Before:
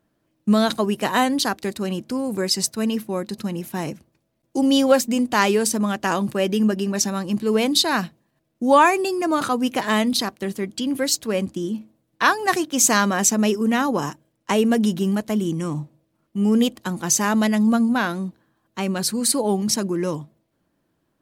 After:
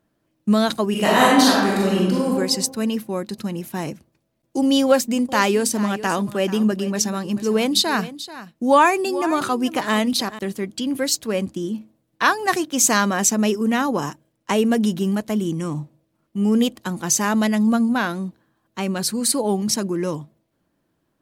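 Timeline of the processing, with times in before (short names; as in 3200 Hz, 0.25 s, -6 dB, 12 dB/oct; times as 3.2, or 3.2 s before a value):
0.9–2.3 reverb throw, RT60 1.2 s, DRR -6 dB
4.85–10.39 echo 0.436 s -15 dB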